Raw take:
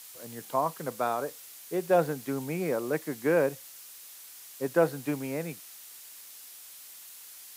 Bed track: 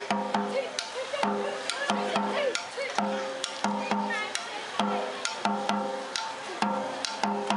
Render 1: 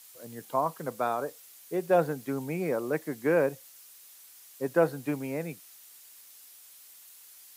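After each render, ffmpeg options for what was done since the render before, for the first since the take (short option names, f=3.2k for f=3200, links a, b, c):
-af "afftdn=nr=6:nf=-48"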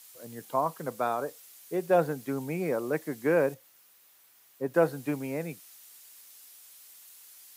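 -filter_complex "[0:a]asettb=1/sr,asplit=3[a][b][c];[a]atrim=end=3.544[d];[b]atrim=start=3.54:end=4.74,asetpts=PTS-STARTPTS,afade=t=in:d=0.004:c=qsin,afade=t=out:st=1.196:d=0.004:c=qsin,equalizer=f=7.9k:w=0.37:g=-10.5[e];[c]atrim=start=4.736[f];[d][e]acrossfade=d=0.004:c1=hsin:c2=qsin[g];[g][f]acrossfade=d=0.004:c1=qsin:c2=hsin"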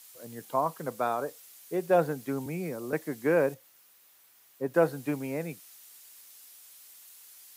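-filter_complex "[0:a]asettb=1/sr,asplit=3[a][b][c];[a]atrim=end=2.464[d];[b]atrim=start=2.46:end=2.93,asetpts=PTS-STARTPTS,afade=t=in:d=0.004:c=qsin,afade=t=out:st=0.466:d=0.004:c=qsin,acrossover=split=260|3000[e][f][g];[f]acompressor=threshold=-37dB:ratio=6:attack=3.2:release=140:knee=2.83:detection=peak[h];[e][h][g]amix=inputs=3:normalize=0[i];[c]atrim=start=2.926[j];[d][i]acrossfade=d=0.004:c1=hsin:c2=qsin[k];[k][j]acrossfade=d=0.004:c1=qsin:c2=hsin"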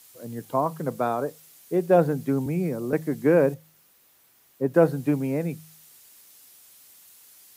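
-af "lowshelf=f=460:g=11.5,bandreject=f=52.72:t=h:w=4,bandreject=f=105.44:t=h:w=4,bandreject=f=158.16:t=h:w=4"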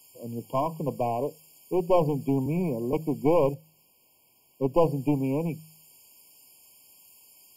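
-af "aeval=exprs='clip(val(0),-1,0.0708)':c=same,afftfilt=real='re*eq(mod(floor(b*sr/1024/1100),2),0)':imag='im*eq(mod(floor(b*sr/1024/1100),2),0)':win_size=1024:overlap=0.75"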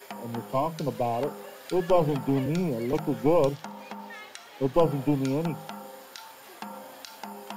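-filter_complex "[1:a]volume=-12dB[a];[0:a][a]amix=inputs=2:normalize=0"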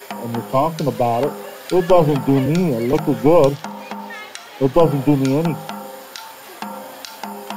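-af "volume=10dB,alimiter=limit=-1dB:level=0:latency=1"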